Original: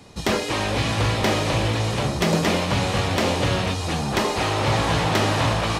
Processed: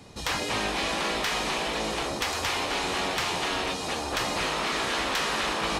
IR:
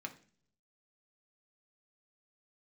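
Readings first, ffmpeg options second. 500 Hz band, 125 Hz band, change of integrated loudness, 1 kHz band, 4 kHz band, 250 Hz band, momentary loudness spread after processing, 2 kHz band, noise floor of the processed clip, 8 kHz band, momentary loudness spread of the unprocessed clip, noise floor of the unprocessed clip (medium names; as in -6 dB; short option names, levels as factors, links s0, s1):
-8.0 dB, -19.0 dB, -5.5 dB, -4.5 dB, -2.5 dB, -10.5 dB, 3 LU, -2.5 dB, -34 dBFS, -2.5 dB, 3 LU, -28 dBFS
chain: -af "afftfilt=real='re*lt(hypot(re,im),0.251)':imag='im*lt(hypot(re,im),0.251)':win_size=1024:overlap=0.75,asoftclip=type=tanh:threshold=0.282,volume=0.794"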